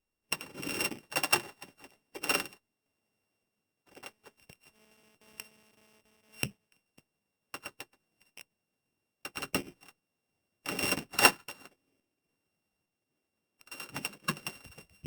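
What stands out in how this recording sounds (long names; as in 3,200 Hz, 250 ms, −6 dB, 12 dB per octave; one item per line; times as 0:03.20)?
a buzz of ramps at a fixed pitch in blocks of 16 samples
sample-and-hold tremolo
Opus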